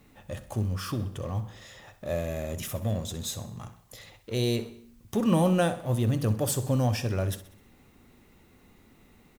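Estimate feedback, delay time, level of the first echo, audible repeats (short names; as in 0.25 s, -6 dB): 50%, 64 ms, -15.0 dB, 4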